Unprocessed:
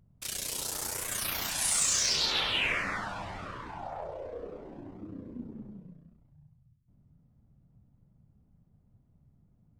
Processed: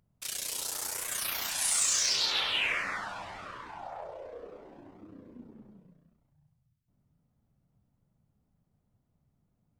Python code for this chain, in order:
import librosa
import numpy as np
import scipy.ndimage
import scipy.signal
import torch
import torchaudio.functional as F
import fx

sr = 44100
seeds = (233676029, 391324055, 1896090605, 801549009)

y = fx.low_shelf(x, sr, hz=350.0, db=-11.5)